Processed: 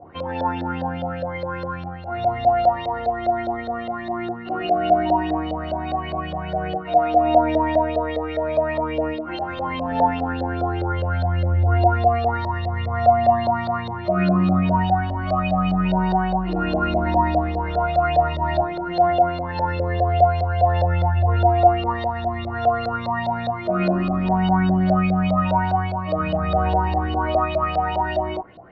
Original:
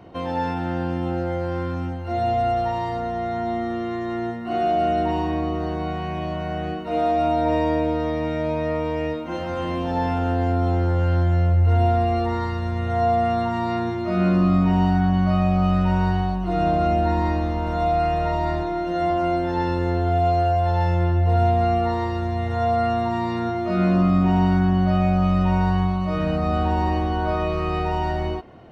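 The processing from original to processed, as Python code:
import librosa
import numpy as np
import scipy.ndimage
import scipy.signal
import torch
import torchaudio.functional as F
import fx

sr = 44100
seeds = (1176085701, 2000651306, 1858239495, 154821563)

y = fx.chorus_voices(x, sr, voices=2, hz=0.15, base_ms=13, depth_ms=3.5, mix_pct=45)
y = fx.filter_lfo_lowpass(y, sr, shape='saw_up', hz=4.9, low_hz=550.0, high_hz=4300.0, q=5.5)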